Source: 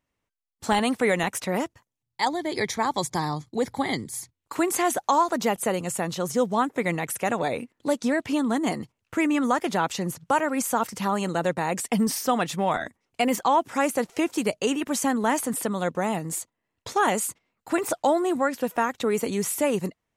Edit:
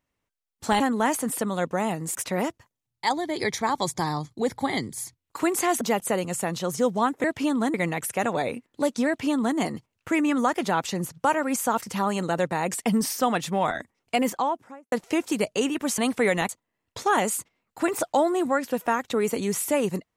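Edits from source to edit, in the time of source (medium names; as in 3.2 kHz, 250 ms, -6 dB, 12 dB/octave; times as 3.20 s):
0.80–1.31 s: swap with 15.04–16.39 s
4.97–5.37 s: delete
8.13–8.63 s: copy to 6.80 s
13.21–13.98 s: studio fade out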